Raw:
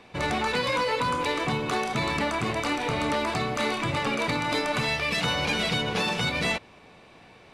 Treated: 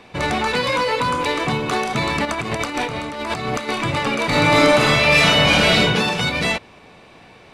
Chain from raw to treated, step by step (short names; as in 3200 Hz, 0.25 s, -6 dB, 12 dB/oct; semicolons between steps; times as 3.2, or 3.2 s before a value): 2.25–3.69 negative-ratio compressor -30 dBFS, ratio -0.5; 4.27–5.81 reverb throw, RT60 0.96 s, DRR -6 dB; gain +6 dB